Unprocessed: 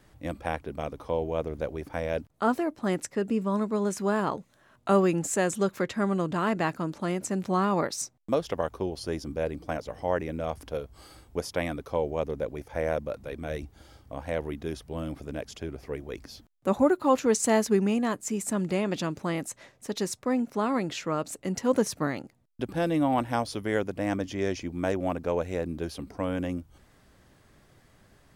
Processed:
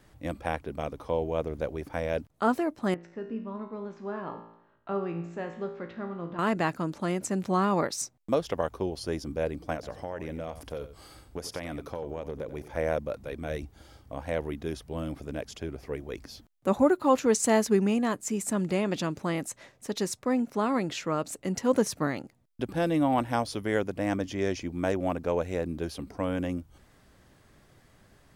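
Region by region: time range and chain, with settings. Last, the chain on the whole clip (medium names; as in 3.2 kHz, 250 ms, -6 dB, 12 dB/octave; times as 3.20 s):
2.94–6.39 s: Gaussian low-pass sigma 2.4 samples + feedback comb 57 Hz, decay 0.8 s, mix 80%
9.74–12.77 s: compression 12:1, threshold -30 dBFS + delay 91 ms -12.5 dB
whole clip: none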